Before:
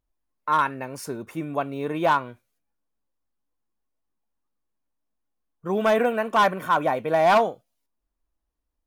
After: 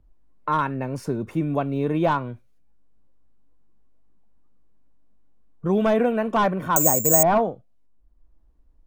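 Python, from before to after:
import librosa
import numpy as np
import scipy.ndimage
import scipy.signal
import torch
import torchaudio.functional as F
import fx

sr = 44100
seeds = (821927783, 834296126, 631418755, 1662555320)

y = fx.tilt_eq(x, sr, slope=-4.0)
y = fx.resample_bad(y, sr, factor=6, down='filtered', up='zero_stuff', at=(6.76, 7.23))
y = fx.band_squash(y, sr, depth_pct=40)
y = y * 10.0 ** (-2.5 / 20.0)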